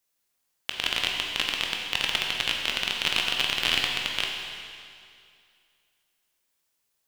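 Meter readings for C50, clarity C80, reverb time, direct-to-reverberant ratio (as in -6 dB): 2.0 dB, 3.0 dB, 2.3 s, 0.0 dB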